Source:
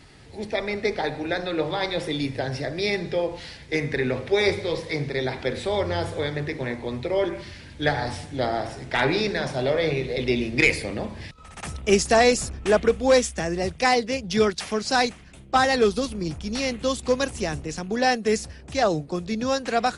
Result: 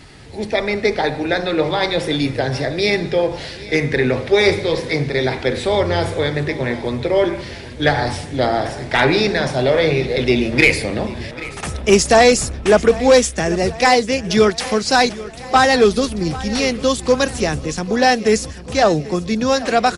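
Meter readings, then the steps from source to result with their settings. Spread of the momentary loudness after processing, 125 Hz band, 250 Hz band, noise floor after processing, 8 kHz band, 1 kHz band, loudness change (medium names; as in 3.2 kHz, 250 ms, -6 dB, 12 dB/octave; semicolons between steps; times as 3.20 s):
9 LU, +8.0 dB, +7.5 dB, -33 dBFS, +7.5 dB, +7.5 dB, +7.5 dB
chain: saturation -9 dBFS, distortion -22 dB; feedback delay 791 ms, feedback 59%, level -18 dB; trim +8 dB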